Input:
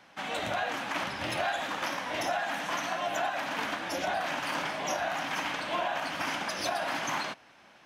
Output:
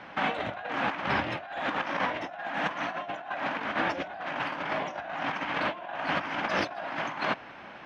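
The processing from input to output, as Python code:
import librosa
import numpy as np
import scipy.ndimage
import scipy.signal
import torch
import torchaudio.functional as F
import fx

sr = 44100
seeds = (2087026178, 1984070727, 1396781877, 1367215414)

y = scipy.signal.sosfilt(scipy.signal.butter(2, 2500.0, 'lowpass', fs=sr, output='sos'), x)
y = fx.over_compress(y, sr, threshold_db=-38.0, ratio=-0.5)
y = y * 10.0 ** (7.0 / 20.0)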